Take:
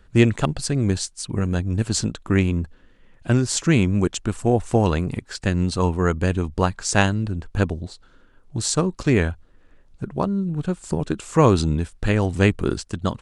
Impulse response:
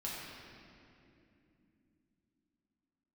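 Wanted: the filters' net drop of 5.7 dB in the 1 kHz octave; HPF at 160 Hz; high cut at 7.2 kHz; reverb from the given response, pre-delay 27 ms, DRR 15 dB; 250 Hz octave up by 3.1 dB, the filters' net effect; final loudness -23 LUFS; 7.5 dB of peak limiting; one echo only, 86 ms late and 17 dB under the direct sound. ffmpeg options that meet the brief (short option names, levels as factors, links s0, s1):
-filter_complex "[0:a]highpass=160,lowpass=7200,equalizer=f=250:t=o:g=6,equalizer=f=1000:t=o:g=-8,alimiter=limit=0.355:level=0:latency=1,aecho=1:1:86:0.141,asplit=2[s0][s1];[1:a]atrim=start_sample=2205,adelay=27[s2];[s1][s2]afir=irnorm=-1:irlink=0,volume=0.141[s3];[s0][s3]amix=inputs=2:normalize=0"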